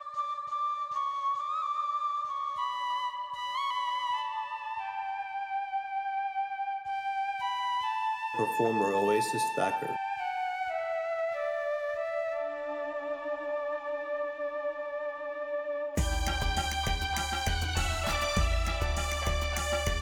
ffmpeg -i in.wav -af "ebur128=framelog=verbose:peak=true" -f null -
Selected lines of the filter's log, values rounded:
Integrated loudness:
  I:         -31.9 LUFS
  Threshold: -41.9 LUFS
Loudness range:
  LRA:         4.3 LU
  Threshold: -52.0 LUFS
  LRA low:   -34.2 LUFS
  LRA high:  -29.9 LUFS
True peak:
  Peak:      -14.4 dBFS